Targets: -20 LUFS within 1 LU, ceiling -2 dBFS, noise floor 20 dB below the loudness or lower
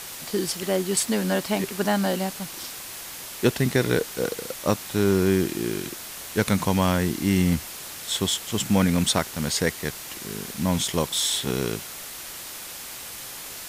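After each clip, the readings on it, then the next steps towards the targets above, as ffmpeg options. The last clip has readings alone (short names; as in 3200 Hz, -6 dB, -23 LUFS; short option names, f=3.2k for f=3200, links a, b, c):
noise floor -38 dBFS; noise floor target -46 dBFS; loudness -25.5 LUFS; peak -6.0 dBFS; loudness target -20.0 LUFS
-> -af "afftdn=nr=8:nf=-38"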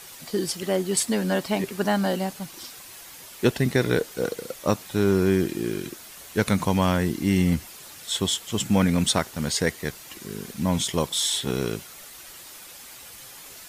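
noise floor -44 dBFS; noise floor target -45 dBFS
-> -af "afftdn=nr=6:nf=-44"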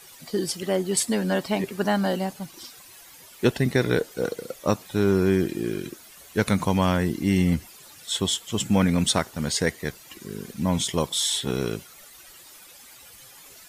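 noise floor -48 dBFS; loudness -25.0 LUFS; peak -6.0 dBFS; loudness target -20.0 LUFS
-> -af "volume=5dB,alimiter=limit=-2dB:level=0:latency=1"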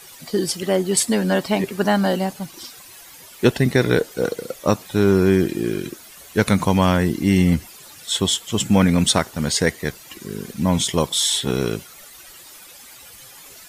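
loudness -20.0 LUFS; peak -2.0 dBFS; noise floor -43 dBFS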